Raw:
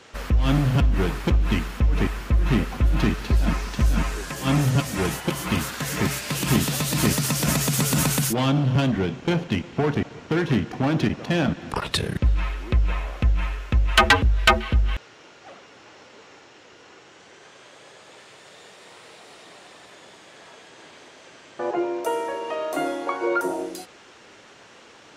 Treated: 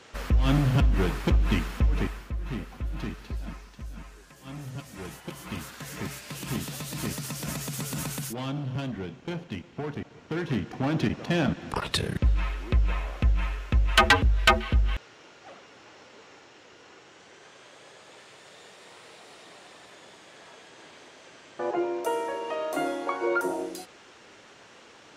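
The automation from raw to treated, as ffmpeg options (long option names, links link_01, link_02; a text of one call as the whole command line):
ffmpeg -i in.wav -af "volume=14.5dB,afade=type=out:start_time=1.79:duration=0.52:silence=0.298538,afade=type=out:start_time=3.18:duration=0.59:silence=0.446684,afade=type=in:start_time=4.52:duration=1.18:silence=0.375837,afade=type=in:start_time=10.02:duration=1.23:silence=0.375837" out.wav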